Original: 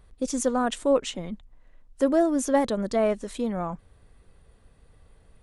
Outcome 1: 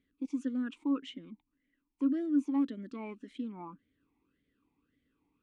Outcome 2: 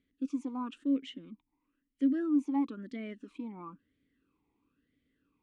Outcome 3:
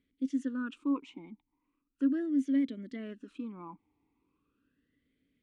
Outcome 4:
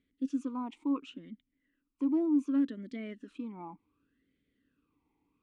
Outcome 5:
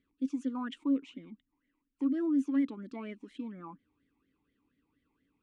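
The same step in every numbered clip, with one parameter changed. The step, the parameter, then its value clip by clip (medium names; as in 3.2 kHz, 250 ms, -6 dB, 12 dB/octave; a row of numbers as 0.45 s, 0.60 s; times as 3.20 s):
talking filter, rate: 1.8 Hz, 1 Hz, 0.38 Hz, 0.68 Hz, 4.2 Hz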